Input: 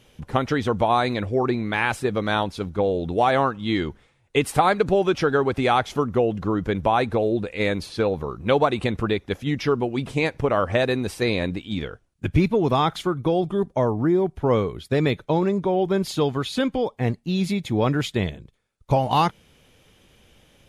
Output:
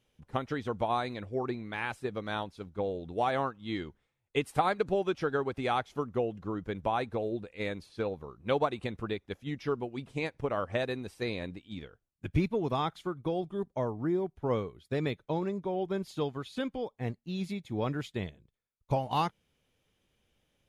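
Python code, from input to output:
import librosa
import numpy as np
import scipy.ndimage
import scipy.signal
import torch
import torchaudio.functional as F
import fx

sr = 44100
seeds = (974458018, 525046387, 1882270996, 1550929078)

y = fx.upward_expand(x, sr, threshold_db=-36.0, expansion=1.5)
y = F.gain(torch.from_numpy(y), -8.0).numpy()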